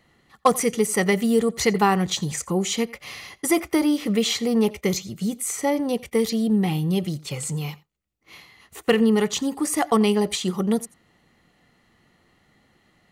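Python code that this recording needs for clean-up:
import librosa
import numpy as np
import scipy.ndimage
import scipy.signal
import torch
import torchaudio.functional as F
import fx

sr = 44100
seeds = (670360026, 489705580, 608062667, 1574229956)

y = fx.fix_declip(x, sr, threshold_db=-6.5)
y = fx.fix_echo_inverse(y, sr, delay_ms=87, level_db=-22.0)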